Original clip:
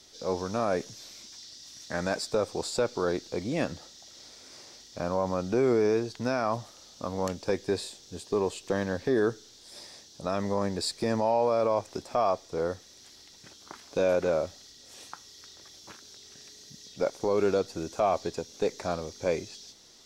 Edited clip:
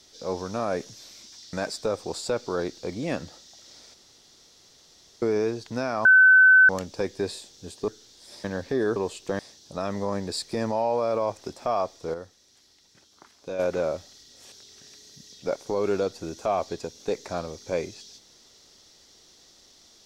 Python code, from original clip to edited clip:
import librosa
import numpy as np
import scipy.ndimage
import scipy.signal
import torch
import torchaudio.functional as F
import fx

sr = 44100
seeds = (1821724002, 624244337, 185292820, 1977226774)

y = fx.edit(x, sr, fx.cut(start_s=1.53, length_s=0.49),
    fx.room_tone_fill(start_s=4.43, length_s=1.28),
    fx.bleep(start_s=6.54, length_s=0.64, hz=1520.0, db=-11.0),
    fx.swap(start_s=8.37, length_s=0.43, other_s=9.32, other_length_s=0.56),
    fx.clip_gain(start_s=12.63, length_s=1.45, db=-7.5),
    fx.cut(start_s=15.01, length_s=1.05), tone=tone)